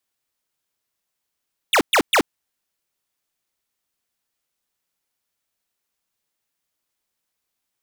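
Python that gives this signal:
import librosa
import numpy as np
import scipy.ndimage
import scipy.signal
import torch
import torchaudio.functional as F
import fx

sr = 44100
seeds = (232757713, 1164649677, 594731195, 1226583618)

y = fx.laser_zaps(sr, level_db=-15.0, start_hz=3900.0, end_hz=230.0, length_s=0.08, wave='square', shots=3, gap_s=0.12)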